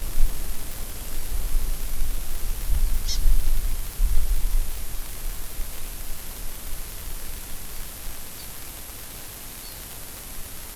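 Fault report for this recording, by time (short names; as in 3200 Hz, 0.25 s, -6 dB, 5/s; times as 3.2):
crackle 120/s -26 dBFS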